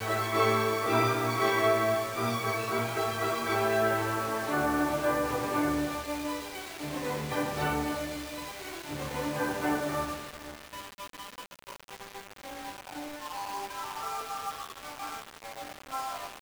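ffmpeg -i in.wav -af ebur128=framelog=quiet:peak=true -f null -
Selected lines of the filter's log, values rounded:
Integrated loudness:
  I:         -30.6 LUFS
  Threshold: -41.4 LUFS
Loudness range:
  LRA:        11.7 LU
  Threshold: -51.9 LUFS
  LRA low:   -39.6 LUFS
  LRA high:  -27.9 LUFS
True peak:
  Peak:      -12.4 dBFS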